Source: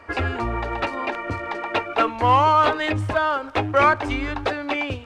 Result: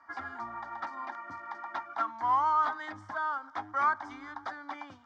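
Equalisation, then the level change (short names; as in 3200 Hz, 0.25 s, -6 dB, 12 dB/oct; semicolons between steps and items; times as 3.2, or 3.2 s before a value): speaker cabinet 320–5900 Hz, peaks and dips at 360 Hz -5 dB, 600 Hz -7 dB, 4100 Hz -6 dB; fixed phaser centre 1100 Hz, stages 4; -8.5 dB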